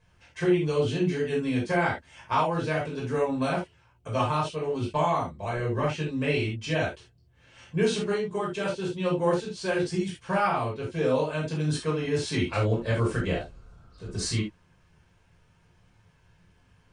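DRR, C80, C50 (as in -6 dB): -5.0 dB, 13.0 dB, 5.5 dB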